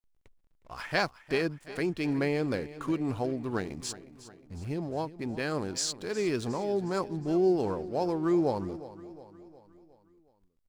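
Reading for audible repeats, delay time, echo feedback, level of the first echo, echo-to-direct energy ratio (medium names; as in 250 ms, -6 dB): 4, 361 ms, 52%, -16.0 dB, -14.5 dB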